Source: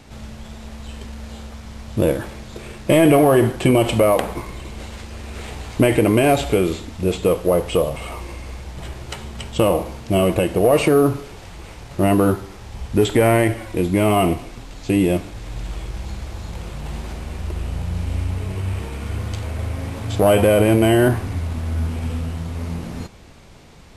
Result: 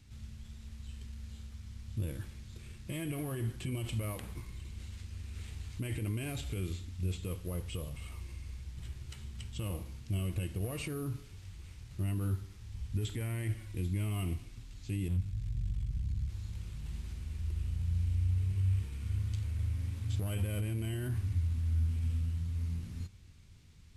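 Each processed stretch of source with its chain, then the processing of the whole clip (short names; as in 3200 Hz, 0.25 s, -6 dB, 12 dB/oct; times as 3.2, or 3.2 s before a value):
15.08–16.29 resonant low shelf 220 Hz +10.5 dB, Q 1.5 + tube stage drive 15 dB, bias 0.75
whole clip: passive tone stack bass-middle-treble 6-0-2; limiter -29.5 dBFS; bell 94 Hz +9 dB 0.54 oct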